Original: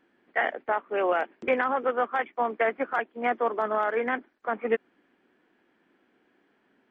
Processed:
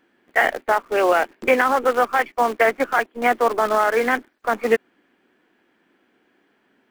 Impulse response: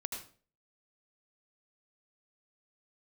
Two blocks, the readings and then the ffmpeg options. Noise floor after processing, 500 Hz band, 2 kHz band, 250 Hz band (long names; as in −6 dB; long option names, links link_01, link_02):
−65 dBFS, +7.5 dB, +9.0 dB, +7.5 dB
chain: -filter_complex "[0:a]highshelf=frequency=3000:gain=5.5,asplit=2[link_01][link_02];[link_02]acrusher=bits=6:dc=4:mix=0:aa=0.000001,volume=-5dB[link_03];[link_01][link_03]amix=inputs=2:normalize=0,volume=3.5dB"